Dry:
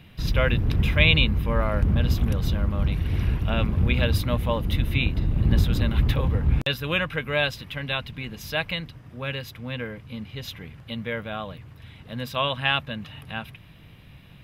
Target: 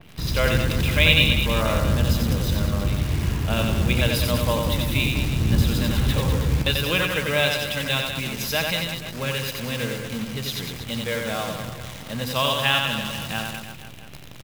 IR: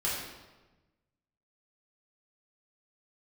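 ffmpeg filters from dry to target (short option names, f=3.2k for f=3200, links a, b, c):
-filter_complex "[0:a]highpass=f=75:p=1,equalizer=f=2.2k:w=0.82:g=-2.5,bandreject=f=50:t=h:w=6,bandreject=f=100:t=h:w=6,bandreject=f=150:t=h:w=6,bandreject=f=200:t=h:w=6,bandreject=f=250:t=h:w=6,asplit=2[a][b];[b]acompressor=threshold=-37dB:ratio=10,volume=2dB[c];[a][c]amix=inputs=2:normalize=0,acrusher=bits=7:dc=4:mix=0:aa=0.000001,asplit=2[d][e];[e]aecho=0:1:90|198|327.6|483.1|669.7:0.631|0.398|0.251|0.158|0.1[f];[d][f]amix=inputs=2:normalize=0,adynamicequalizer=threshold=0.0158:dfrequency=2800:dqfactor=0.7:tfrequency=2800:tqfactor=0.7:attack=5:release=100:ratio=0.375:range=2.5:mode=boostabove:tftype=highshelf"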